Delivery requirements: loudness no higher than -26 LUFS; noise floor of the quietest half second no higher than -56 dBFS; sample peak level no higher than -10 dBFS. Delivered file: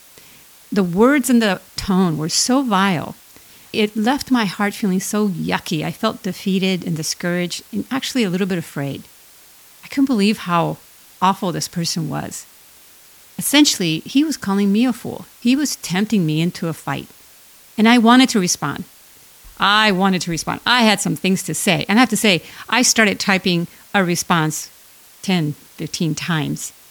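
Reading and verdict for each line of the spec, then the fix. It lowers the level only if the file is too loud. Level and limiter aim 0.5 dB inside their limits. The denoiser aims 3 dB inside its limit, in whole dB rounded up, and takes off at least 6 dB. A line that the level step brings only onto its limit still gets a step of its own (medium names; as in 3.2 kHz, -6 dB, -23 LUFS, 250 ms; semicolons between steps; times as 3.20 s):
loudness -18.0 LUFS: fail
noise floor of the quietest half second -46 dBFS: fail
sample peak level -1.5 dBFS: fail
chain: noise reduction 6 dB, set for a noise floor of -46 dBFS; trim -8.5 dB; peak limiter -10.5 dBFS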